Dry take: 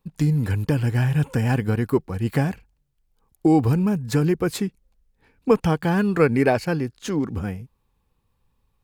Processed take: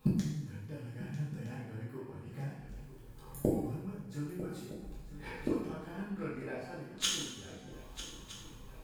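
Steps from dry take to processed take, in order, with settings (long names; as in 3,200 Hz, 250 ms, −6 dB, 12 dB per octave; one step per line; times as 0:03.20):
multi-voice chorus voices 4, 0.31 Hz, delay 24 ms, depth 4.4 ms
gate with flip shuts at −30 dBFS, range −38 dB
on a send: feedback echo with a long and a short gap by turns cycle 1,263 ms, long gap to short 3 to 1, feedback 41%, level −13.5 dB
on the sum: coupled-rooms reverb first 0.78 s, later 2.2 s, from −18 dB, DRR −6.5 dB
level +12 dB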